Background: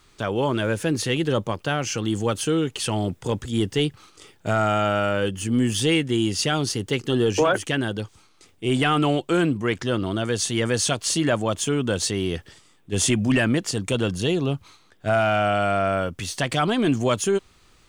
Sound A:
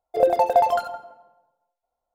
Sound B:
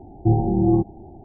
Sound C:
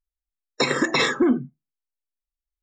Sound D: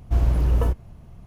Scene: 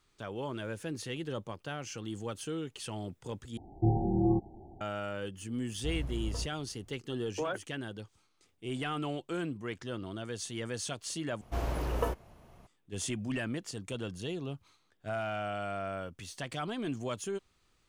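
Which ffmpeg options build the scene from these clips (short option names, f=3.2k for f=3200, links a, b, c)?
-filter_complex "[4:a]asplit=2[a][b];[0:a]volume=-15dB[c];[2:a]equalizer=f=200:w=0.57:g=-2[d];[b]bass=f=250:g=-15,treble=f=4k:g=-1[e];[c]asplit=3[f][g][h];[f]atrim=end=3.574[i];[d]atrim=end=1.24,asetpts=PTS-STARTPTS,volume=-8dB[j];[g]atrim=start=4.806:end=11.414[k];[e]atrim=end=1.26,asetpts=PTS-STARTPTS,volume=-0.5dB[l];[h]atrim=start=12.666[m];[a]atrim=end=1.26,asetpts=PTS-STARTPTS,volume=-17dB,afade=t=in:d=0.004:c=hsin,afade=t=out:st=1.256:d=0.004:c=hsin,adelay=252693S[n];[i][j]acrossfade=d=0.004:c1=hsin:c2=hsin[o];[o][k]acrossfade=d=0.004:c1=hsin:c2=hsin[p];[p][l]acrossfade=d=0.004:c1=hsin:c2=hsin[q];[q][m]acrossfade=d=0.004:c1=hsin:c2=hsin[r];[r][n]amix=inputs=2:normalize=0"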